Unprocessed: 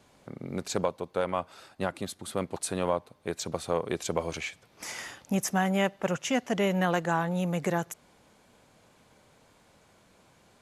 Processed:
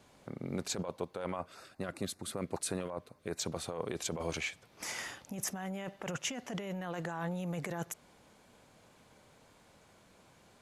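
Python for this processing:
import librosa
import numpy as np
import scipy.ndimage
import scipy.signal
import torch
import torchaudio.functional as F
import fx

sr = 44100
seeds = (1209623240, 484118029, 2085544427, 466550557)

y = fx.over_compress(x, sr, threshold_db=-32.0, ratio=-1.0)
y = fx.filter_lfo_notch(y, sr, shape='square', hz=5.2, low_hz=860.0, high_hz=3200.0, q=1.8, at=(1.36, 3.39))
y = y * 10.0 ** (-5.0 / 20.0)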